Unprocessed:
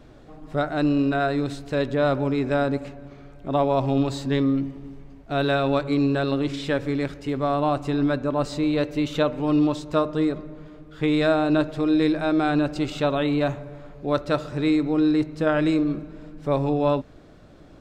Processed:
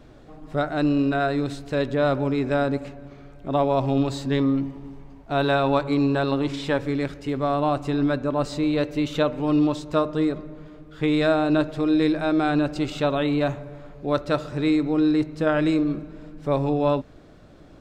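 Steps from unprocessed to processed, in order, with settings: 4.39–6.82 s: peaking EQ 920 Hz +7.5 dB 0.51 oct

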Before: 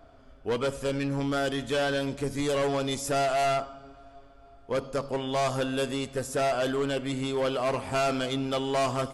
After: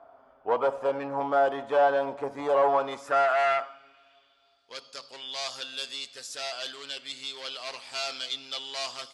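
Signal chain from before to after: band-pass sweep 880 Hz -> 4.4 kHz, 2.64–4.68 s; dynamic bell 680 Hz, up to +6 dB, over -50 dBFS, Q 1; trim +8 dB

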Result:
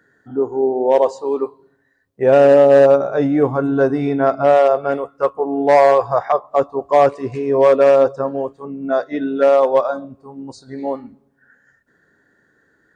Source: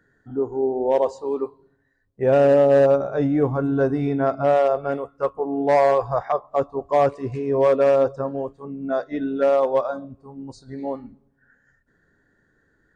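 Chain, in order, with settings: high-pass 250 Hz 6 dB/octave; trim +6.5 dB

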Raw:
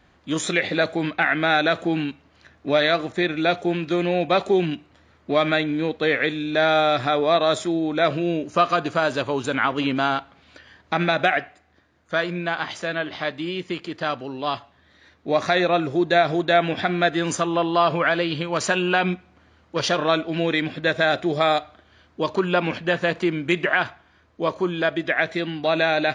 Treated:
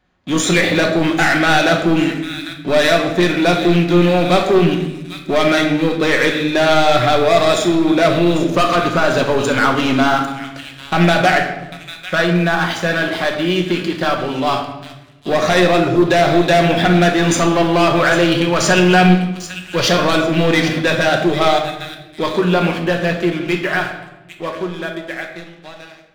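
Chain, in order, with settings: fade out at the end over 5.74 s; feedback echo behind a high-pass 797 ms, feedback 31%, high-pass 2.6 kHz, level -11 dB; waveshaping leveller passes 3; simulated room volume 450 m³, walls mixed, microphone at 1 m; trim -2.5 dB

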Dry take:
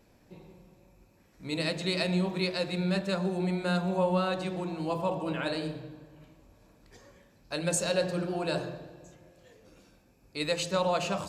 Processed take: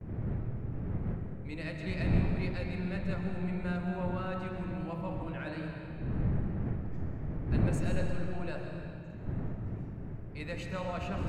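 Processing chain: wind noise 240 Hz -30 dBFS; gate with hold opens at -35 dBFS; graphic EQ 125/250/500/1000/2000/4000/8000 Hz +3/-4/-5/-4/+6/-6/-5 dB; in parallel at -5 dB: saturation -26 dBFS, distortion -7 dB; on the sum: treble shelf 2.4 kHz -9.5 dB; on a send at -3.5 dB: reverberation RT60 2.6 s, pre-delay 85 ms; on the sum: trim -8.5 dB

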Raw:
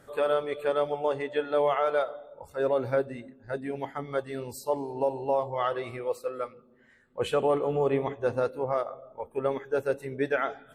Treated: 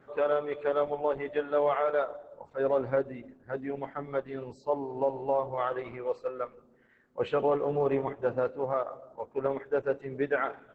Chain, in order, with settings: band-pass 110–2300 Hz; trim -1 dB; Opus 10 kbps 48 kHz

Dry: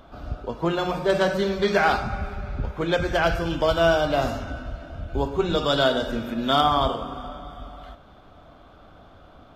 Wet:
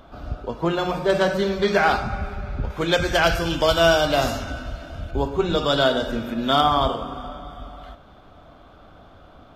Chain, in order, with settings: 2.70–5.11 s: treble shelf 2.7 kHz +10 dB; trim +1.5 dB

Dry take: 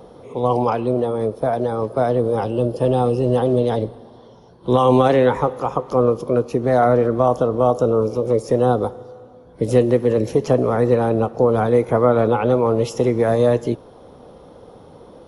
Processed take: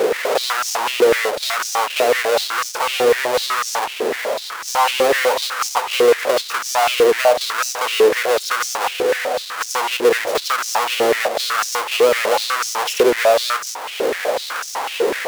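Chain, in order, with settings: square wave that keeps the level; compression 4:1, threshold -30 dBFS, peak gain reduction 19 dB; power-law waveshaper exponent 0.5; step-sequenced high-pass 8 Hz 420–5800 Hz; trim +4 dB

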